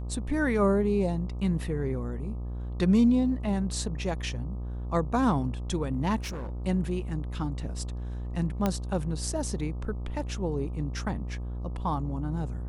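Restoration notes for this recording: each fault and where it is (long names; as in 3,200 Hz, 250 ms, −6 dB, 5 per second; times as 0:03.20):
mains buzz 60 Hz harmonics 21 −34 dBFS
0:06.21–0:06.64: clipping −32 dBFS
0:08.66: click −13 dBFS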